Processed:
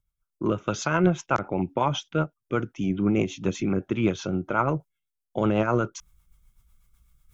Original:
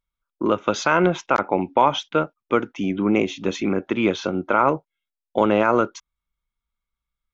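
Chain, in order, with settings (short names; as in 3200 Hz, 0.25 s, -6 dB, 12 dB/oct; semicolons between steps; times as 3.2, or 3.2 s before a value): graphic EQ 125/250/500/1000/2000/4000 Hz +5/-8/-8/-6/-8/-9 dB; reverse; upward compressor, threshold -45 dBFS; reverse; rotary speaker horn 8 Hz; gain +5.5 dB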